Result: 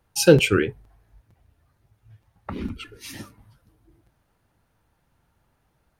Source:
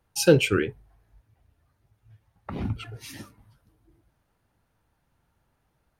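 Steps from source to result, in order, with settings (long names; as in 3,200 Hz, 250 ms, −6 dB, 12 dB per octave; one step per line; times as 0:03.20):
0:02.53–0:03.05: phaser with its sweep stopped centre 300 Hz, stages 4
regular buffer underruns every 0.46 s, samples 256, repeat, from 0:00.38
level +3.5 dB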